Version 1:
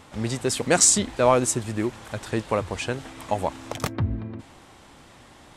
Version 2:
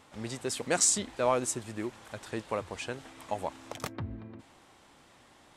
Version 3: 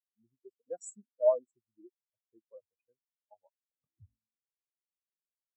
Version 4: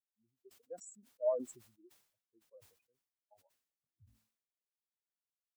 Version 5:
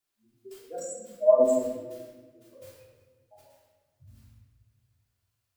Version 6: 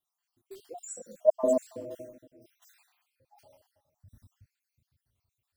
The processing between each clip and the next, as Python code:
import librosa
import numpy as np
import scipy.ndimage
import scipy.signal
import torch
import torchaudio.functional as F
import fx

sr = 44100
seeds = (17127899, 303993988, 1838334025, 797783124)

y1 = fx.low_shelf(x, sr, hz=170.0, db=-7.5)
y1 = F.gain(torch.from_numpy(y1), -8.0).numpy()
y2 = fx.spectral_expand(y1, sr, expansion=4.0)
y2 = F.gain(torch.from_numpy(y2), -2.5).numpy()
y3 = fx.sustainer(y2, sr, db_per_s=100.0)
y3 = F.gain(torch.from_numpy(y3), -8.0).numpy()
y4 = fx.room_shoebox(y3, sr, seeds[0], volume_m3=890.0, walls='mixed', distance_m=3.2)
y4 = F.gain(torch.from_numpy(y4), 7.5).numpy()
y5 = fx.spec_dropout(y4, sr, seeds[1], share_pct=60)